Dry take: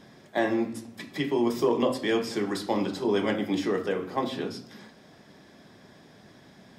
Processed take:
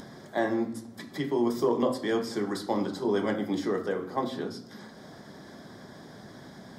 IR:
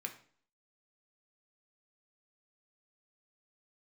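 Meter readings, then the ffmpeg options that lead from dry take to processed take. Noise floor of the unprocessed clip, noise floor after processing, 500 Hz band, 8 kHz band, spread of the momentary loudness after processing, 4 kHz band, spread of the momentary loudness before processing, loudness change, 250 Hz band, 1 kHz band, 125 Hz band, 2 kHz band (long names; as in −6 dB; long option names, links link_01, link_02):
−54 dBFS, −48 dBFS, −1.5 dB, −2.5 dB, 21 LU, −4.5 dB, 10 LU, −2.0 dB, −1.5 dB, −1.0 dB, −1.0 dB, −3.5 dB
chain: -filter_complex "[0:a]equalizer=frequency=2600:width_type=o:width=0.39:gain=-14.5,acompressor=mode=upward:threshold=-36dB:ratio=2.5,asplit=2[link_01][link_02];[1:a]atrim=start_sample=2205,asetrate=28224,aresample=44100,lowpass=4300[link_03];[link_02][link_03]afir=irnorm=-1:irlink=0,volume=-16dB[link_04];[link_01][link_04]amix=inputs=2:normalize=0,volume=-2dB"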